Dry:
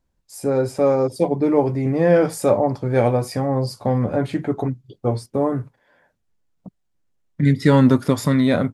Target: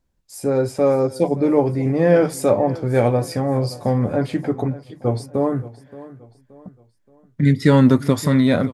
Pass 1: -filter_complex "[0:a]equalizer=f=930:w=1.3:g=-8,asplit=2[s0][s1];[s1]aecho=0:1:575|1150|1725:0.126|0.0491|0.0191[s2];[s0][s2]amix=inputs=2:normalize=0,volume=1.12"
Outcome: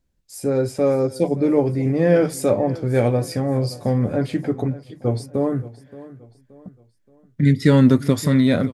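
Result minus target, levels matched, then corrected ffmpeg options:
1 kHz band -4.0 dB
-filter_complex "[0:a]equalizer=f=930:w=1.3:g=-2,asplit=2[s0][s1];[s1]aecho=0:1:575|1150|1725:0.126|0.0491|0.0191[s2];[s0][s2]amix=inputs=2:normalize=0,volume=1.12"

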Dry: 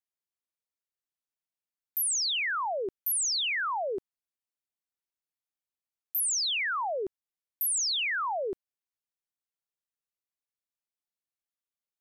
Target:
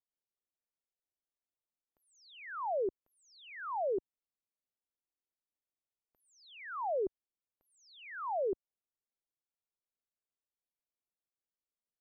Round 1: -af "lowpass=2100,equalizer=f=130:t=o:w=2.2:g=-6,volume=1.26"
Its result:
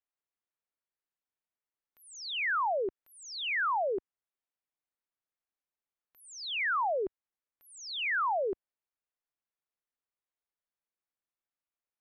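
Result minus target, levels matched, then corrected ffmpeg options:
2 kHz band +10.0 dB
-af "lowpass=640,equalizer=f=130:t=o:w=2.2:g=-6,volume=1.26"

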